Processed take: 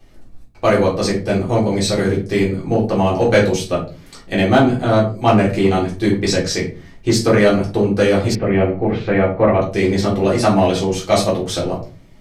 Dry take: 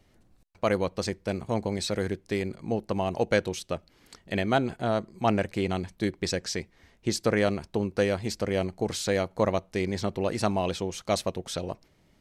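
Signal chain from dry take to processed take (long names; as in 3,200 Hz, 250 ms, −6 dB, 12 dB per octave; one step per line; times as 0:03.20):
rectangular room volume 200 cubic metres, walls furnished, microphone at 3.7 metres
in parallel at −4 dB: gain into a clipping stage and back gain 13.5 dB
0:08.35–0:09.62: on the sum: Chebyshev low-pass filter 2,400 Hz, order 3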